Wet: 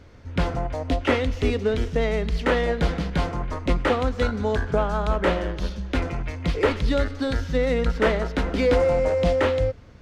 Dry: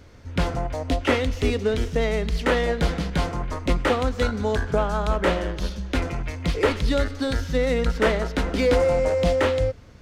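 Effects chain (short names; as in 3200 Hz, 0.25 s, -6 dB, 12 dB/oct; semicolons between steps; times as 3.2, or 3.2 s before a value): high shelf 6600 Hz -10.5 dB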